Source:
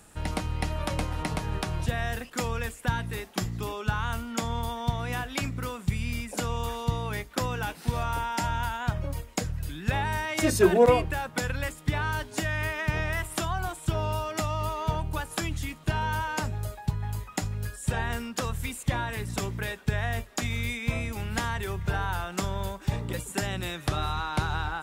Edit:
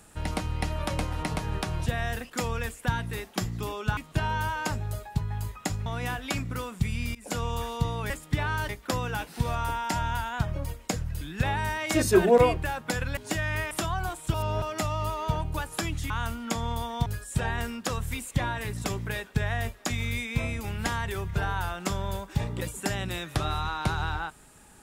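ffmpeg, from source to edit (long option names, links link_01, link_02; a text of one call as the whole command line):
ffmpeg -i in.wav -filter_complex "[0:a]asplit=12[link_01][link_02][link_03][link_04][link_05][link_06][link_07][link_08][link_09][link_10][link_11][link_12];[link_01]atrim=end=3.972[link_13];[link_02]atrim=start=15.688:end=17.582[link_14];[link_03]atrim=start=4.928:end=6.22,asetpts=PTS-STARTPTS,afade=type=out:start_time=1.288:duration=0.004:curve=hsin:silence=0.0794328[link_15];[link_04]atrim=start=6.22:end=7.172,asetpts=PTS-STARTPTS,afade=type=in:duration=0.28:curve=qsin:silence=0.0794328[link_16];[link_05]atrim=start=11.648:end=12.242[link_17];[link_06]atrim=start=7.168:end=11.652[link_18];[link_07]atrim=start=12.238:end=12.782[link_19];[link_08]atrim=start=13.298:end=13.932[link_20];[link_09]atrim=start=13.928:end=14.212,asetpts=PTS-STARTPTS,areverse[link_21];[link_10]atrim=start=14.208:end=15.692[link_22];[link_11]atrim=start=3.968:end=4.932[link_23];[link_12]atrim=start=17.578[link_24];[link_13][link_14]acrossfade=duration=0.004:curve1=hsin:curve2=hsin[link_25];[link_15][link_16]concat=n=2:v=0:a=1[link_26];[link_25][link_26]acrossfade=duration=0.004:curve1=hsin:curve2=hsin[link_27];[link_27][link_17]acrossfade=duration=0.004:curve1=hsin:curve2=hsin[link_28];[link_28][link_18]acrossfade=duration=0.004:curve1=hsin:curve2=hsin[link_29];[link_29][link_19]acrossfade=duration=0.004:curve1=hsin:curve2=hsin[link_30];[link_30][link_20]acrossfade=duration=0.004:curve1=hsin:curve2=hsin[link_31];[link_31][link_21]acrossfade=duration=0.004:curve1=hsin:curve2=hsin[link_32];[link_32][link_22]acrossfade=duration=0.004:curve1=hsin:curve2=hsin[link_33];[link_33][link_23]acrossfade=duration=0.004:curve1=hsin:curve2=hsin[link_34];[link_34][link_24]acrossfade=duration=0.004:curve1=hsin:curve2=hsin" out.wav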